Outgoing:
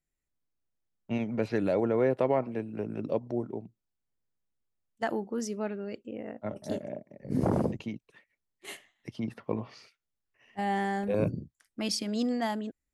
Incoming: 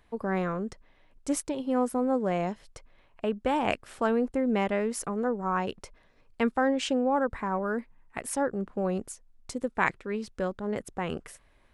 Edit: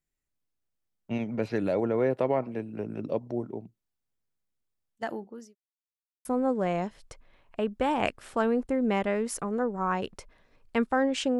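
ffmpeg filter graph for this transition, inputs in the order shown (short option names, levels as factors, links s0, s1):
-filter_complex "[0:a]apad=whole_dur=11.39,atrim=end=11.39,asplit=2[s0][s1];[s0]atrim=end=5.55,asetpts=PTS-STARTPTS,afade=t=out:st=4.61:d=0.94:c=qsin[s2];[s1]atrim=start=5.55:end=6.25,asetpts=PTS-STARTPTS,volume=0[s3];[1:a]atrim=start=1.9:end=7.04,asetpts=PTS-STARTPTS,afade=t=in:d=0.004:c=hsin[s4];[s2][s3][s4]concat=n=3:v=0:a=1"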